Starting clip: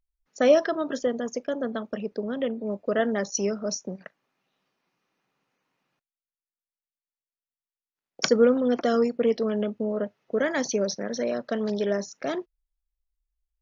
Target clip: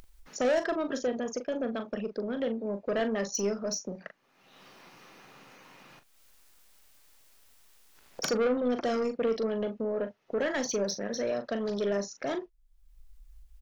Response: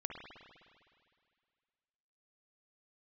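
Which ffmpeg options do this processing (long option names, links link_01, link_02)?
-filter_complex "[0:a]asubboost=boost=3.5:cutoff=68,acompressor=mode=upward:threshold=-32dB:ratio=2.5,asoftclip=type=tanh:threshold=-21.5dB,asplit=2[link_01][link_02];[link_02]adelay=40,volume=-10dB[link_03];[link_01][link_03]amix=inputs=2:normalize=0,volume=-1.5dB"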